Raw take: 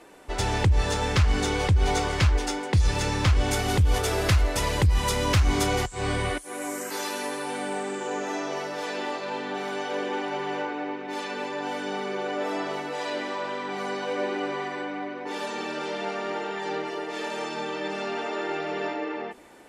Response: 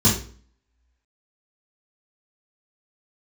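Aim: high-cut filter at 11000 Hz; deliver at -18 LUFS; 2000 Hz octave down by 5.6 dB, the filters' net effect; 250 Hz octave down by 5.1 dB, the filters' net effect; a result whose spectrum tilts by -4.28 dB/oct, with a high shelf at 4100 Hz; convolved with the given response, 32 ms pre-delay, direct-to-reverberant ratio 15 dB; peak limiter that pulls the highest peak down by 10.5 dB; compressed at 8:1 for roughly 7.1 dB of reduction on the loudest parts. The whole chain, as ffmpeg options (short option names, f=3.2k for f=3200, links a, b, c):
-filter_complex "[0:a]lowpass=11k,equalizer=f=250:t=o:g=-7,equalizer=f=2k:t=o:g=-8.5,highshelf=f=4.1k:g=5,acompressor=threshold=-24dB:ratio=8,alimiter=level_in=1dB:limit=-24dB:level=0:latency=1,volume=-1dB,asplit=2[a][b];[1:a]atrim=start_sample=2205,adelay=32[c];[b][c]afir=irnorm=-1:irlink=0,volume=-32dB[d];[a][d]amix=inputs=2:normalize=0,volume=15.5dB"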